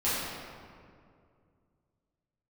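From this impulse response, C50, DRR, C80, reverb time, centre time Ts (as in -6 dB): -2.5 dB, -12.0 dB, -0.5 dB, 2.3 s, 0.133 s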